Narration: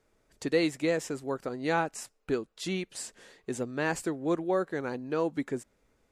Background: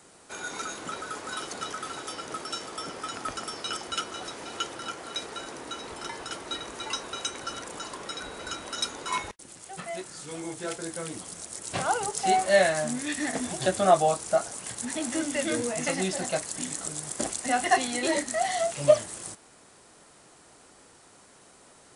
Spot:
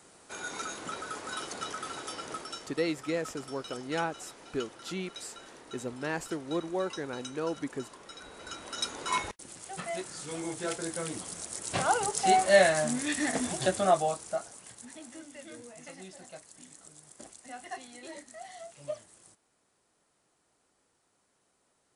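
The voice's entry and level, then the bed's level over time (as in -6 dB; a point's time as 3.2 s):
2.25 s, -4.0 dB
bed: 2.31 s -2.5 dB
2.8 s -11.5 dB
8.07 s -11.5 dB
9.12 s 0 dB
13.48 s 0 dB
15.28 s -18.5 dB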